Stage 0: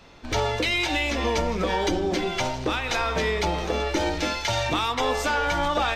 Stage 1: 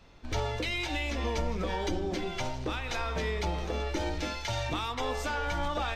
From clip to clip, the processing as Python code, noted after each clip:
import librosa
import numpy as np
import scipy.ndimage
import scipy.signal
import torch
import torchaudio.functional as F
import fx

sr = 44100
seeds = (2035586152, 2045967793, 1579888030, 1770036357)

y = fx.low_shelf(x, sr, hz=120.0, db=9.0)
y = y * librosa.db_to_amplitude(-9.0)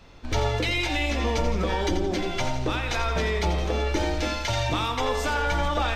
y = fx.echo_feedback(x, sr, ms=86, feedback_pct=42, wet_db=-9.0)
y = y * librosa.db_to_amplitude(6.0)